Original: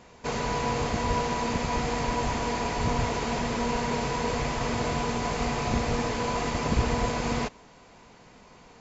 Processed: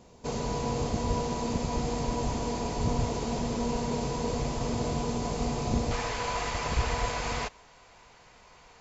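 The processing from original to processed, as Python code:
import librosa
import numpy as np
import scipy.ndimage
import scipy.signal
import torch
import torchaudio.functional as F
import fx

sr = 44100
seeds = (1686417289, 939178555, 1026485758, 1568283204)

y = fx.peak_eq(x, sr, hz=fx.steps((0.0, 1800.0), (5.91, 230.0)), db=-12.0, octaves=1.8)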